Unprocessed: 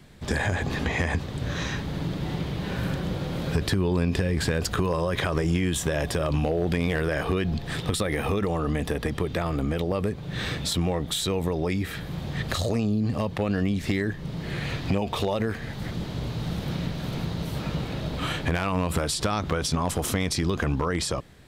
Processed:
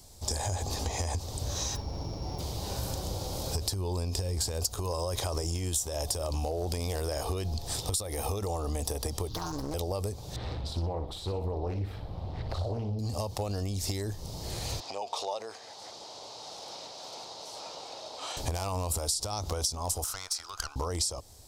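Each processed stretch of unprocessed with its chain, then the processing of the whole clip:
1.75–2.38 s: sorted samples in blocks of 8 samples + whistle 2.3 kHz -54 dBFS + distance through air 270 m
9.29–9.74 s: static phaser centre 2.4 kHz, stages 6 + comb 6.4 ms, depth 85% + loudspeaker Doppler distortion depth 0.57 ms
10.36–12.99 s: distance through air 460 m + flutter echo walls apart 10.2 m, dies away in 0.41 s + loudspeaker Doppler distortion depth 0.45 ms
14.80–18.37 s: high-pass 600 Hz + distance through air 100 m
20.04–20.76 s: resonant high-pass 1.4 kHz, resonance Q 7.1 + treble shelf 2.7 kHz -9.5 dB + valve stage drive 20 dB, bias 0.5
whole clip: FFT filter 100 Hz 0 dB, 150 Hz -15 dB, 850 Hz +1 dB, 1.7 kHz -17 dB, 3.4 kHz -5 dB, 5.2 kHz +11 dB; compression 6:1, threshold -28 dBFS

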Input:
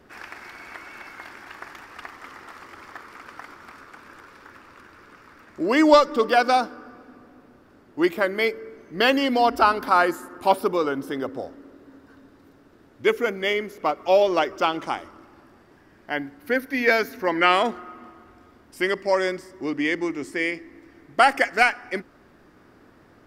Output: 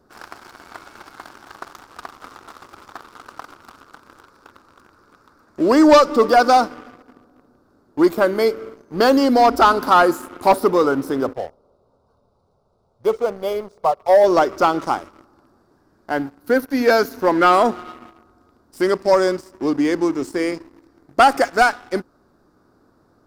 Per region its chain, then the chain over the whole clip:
11.33–14.24 s: distance through air 56 m + static phaser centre 710 Hz, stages 4 + decimation joined by straight lines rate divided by 3×
whole clip: high-order bell 2.4 kHz -13.5 dB 1.1 oct; waveshaping leveller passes 2

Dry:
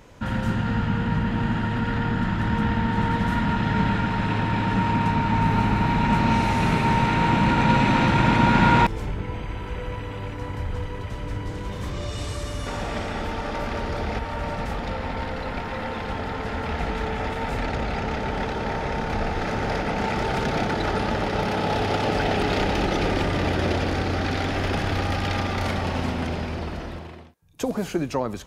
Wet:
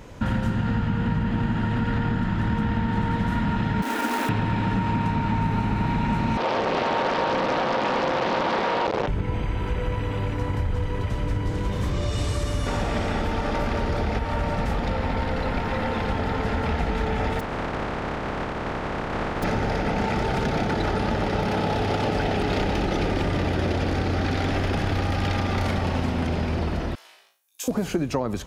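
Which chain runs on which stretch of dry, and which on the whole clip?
3.82–4.29 s: steep high-pass 230 Hz 96 dB/octave + companded quantiser 4-bit
6.37–9.08 s: one-bit comparator + cabinet simulation 390–3300 Hz, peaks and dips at 520 Hz +8 dB, 750 Hz +4 dB, 1.1 kHz -5 dB, 1.9 kHz -7 dB, 2.7 kHz -5 dB + loudspeaker Doppler distortion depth 0.46 ms
17.39–19.42 s: spectral contrast reduction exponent 0.13 + low-pass 1.3 kHz
26.95–27.68 s: high-pass 540 Hz + differentiator + flutter echo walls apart 3.1 m, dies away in 0.37 s
whole clip: bass shelf 460 Hz +4 dB; compression, threshold -24 dBFS; trim +3.5 dB

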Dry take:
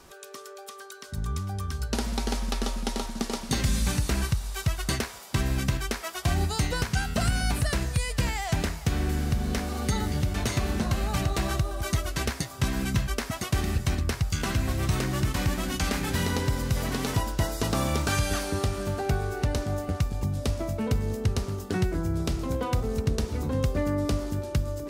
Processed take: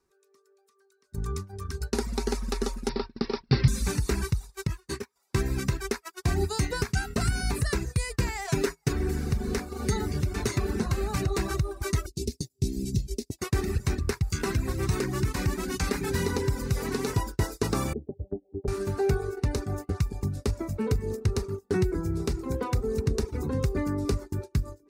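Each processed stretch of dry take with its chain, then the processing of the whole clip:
2.89–3.68 s: peaking EQ 130 Hz +14.5 dB 0.31 oct + careless resampling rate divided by 4×, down none, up filtered
4.67–5.16 s: comb of notches 690 Hz + detune thickener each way 50 cents
8.44–8.93 s: peaking EQ 76 Hz -10 dB 1.1 oct + comb 7.3 ms, depth 91%
12.06–13.39 s: Chebyshev band-stop 310–4700 Hz + treble shelf 11 kHz -4 dB
17.93–18.68 s: steep low-pass 710 Hz 72 dB/octave + bass shelf 100 Hz -8 dB + three-phase chorus
whole clip: reverb removal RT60 0.69 s; gate -33 dBFS, range -24 dB; graphic EQ with 31 bands 400 Hz +10 dB, 630 Hz -10 dB, 3.15 kHz -10 dB, 12.5 kHz -3 dB

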